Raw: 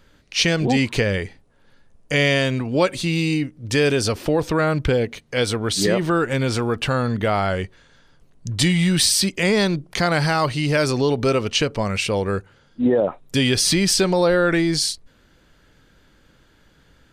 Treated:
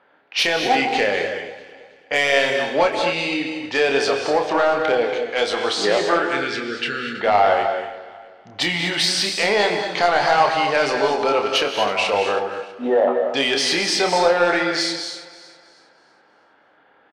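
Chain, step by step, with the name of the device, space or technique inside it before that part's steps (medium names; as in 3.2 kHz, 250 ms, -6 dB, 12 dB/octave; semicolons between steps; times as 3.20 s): 6.19–7.20 s: elliptic band-stop 410–1500 Hz; intercom (band-pass 490–4200 Hz; peaking EQ 780 Hz +8.5 dB 0.5 oct; saturation -13 dBFS, distortion -15 dB; doubling 29 ms -6.5 dB); level-controlled noise filter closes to 1.9 kHz, open at -22 dBFS; echo whose repeats swap between lows and highs 161 ms, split 1.6 kHz, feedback 60%, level -12 dB; gated-style reverb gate 270 ms rising, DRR 5.5 dB; trim +3 dB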